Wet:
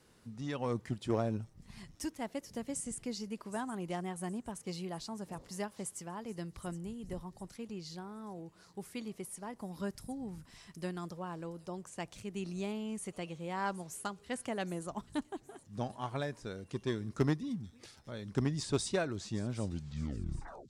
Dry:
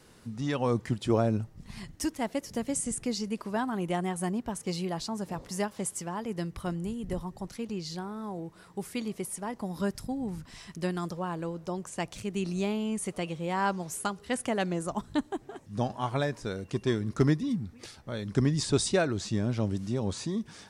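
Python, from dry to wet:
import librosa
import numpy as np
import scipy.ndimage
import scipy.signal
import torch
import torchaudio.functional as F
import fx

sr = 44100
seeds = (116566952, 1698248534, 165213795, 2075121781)

y = fx.tape_stop_end(x, sr, length_s=1.1)
y = fx.cheby_harmonics(y, sr, harmonics=(3, 6, 8), levels_db=(-21, -29, -32), full_scale_db=-13.5)
y = fx.echo_wet_highpass(y, sr, ms=767, feedback_pct=37, hz=5500.0, wet_db=-12.5)
y = F.gain(torch.from_numpy(y), -5.5).numpy()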